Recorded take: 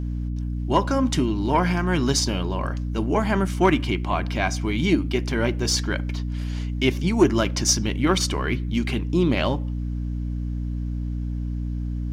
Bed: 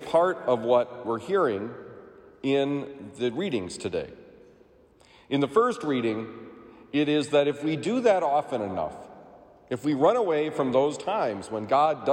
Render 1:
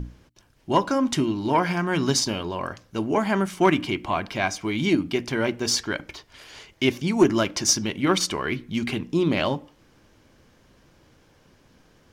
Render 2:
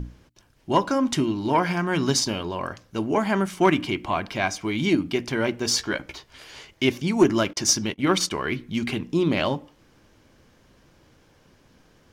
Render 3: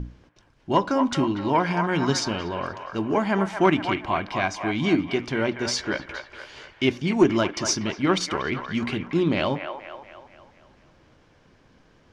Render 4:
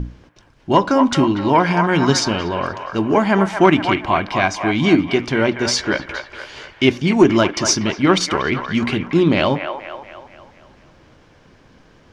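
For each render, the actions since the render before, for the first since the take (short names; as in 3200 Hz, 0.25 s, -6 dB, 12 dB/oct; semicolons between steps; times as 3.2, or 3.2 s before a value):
notches 60/120/180/240/300 Hz
5.73–6.71 doubler 15 ms -6.5 dB; 7.53–8.45 gate -33 dBFS, range -27 dB
air absorption 80 m; on a send: band-limited delay 0.238 s, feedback 50%, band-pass 1200 Hz, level -5.5 dB
gain +7.5 dB; limiter -1 dBFS, peak gain reduction 2 dB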